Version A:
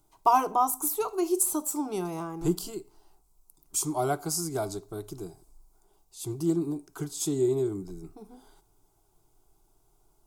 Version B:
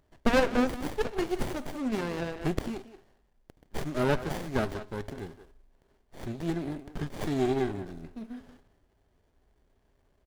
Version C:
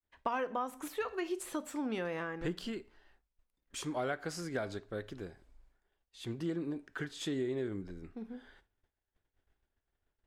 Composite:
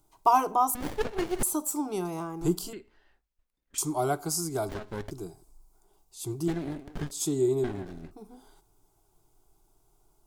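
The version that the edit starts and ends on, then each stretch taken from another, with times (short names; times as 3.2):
A
0.75–1.43 from B
2.73–3.78 from C
4.69–5.11 from B
6.48–7.11 from B
7.64–8.11 from B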